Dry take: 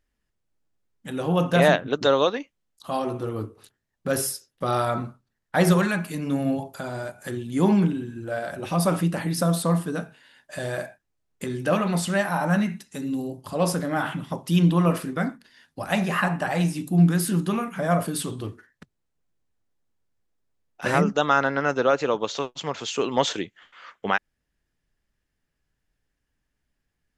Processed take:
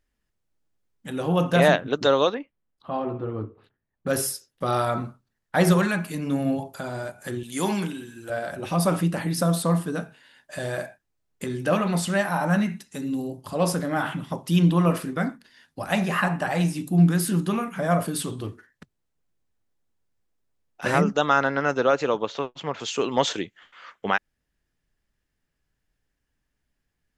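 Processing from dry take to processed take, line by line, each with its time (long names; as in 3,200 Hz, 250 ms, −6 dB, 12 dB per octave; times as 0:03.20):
0:02.34–0:04.07: high-frequency loss of the air 440 metres
0:07.43–0:08.30: spectral tilt +3.5 dB per octave
0:22.22–0:22.80: bass and treble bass 0 dB, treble −13 dB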